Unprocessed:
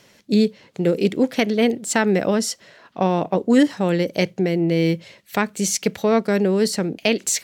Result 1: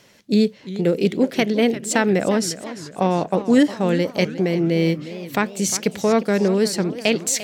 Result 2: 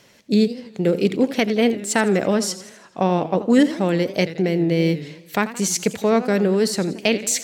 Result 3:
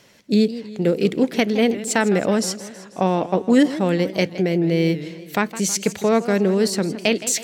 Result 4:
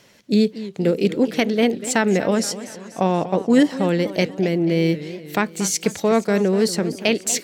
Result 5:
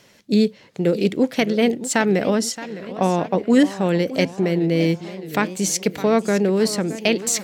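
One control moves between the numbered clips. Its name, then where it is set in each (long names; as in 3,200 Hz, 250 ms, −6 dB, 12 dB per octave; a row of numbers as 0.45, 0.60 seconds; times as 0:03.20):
feedback echo with a swinging delay time, delay time: 352, 83, 161, 239, 616 milliseconds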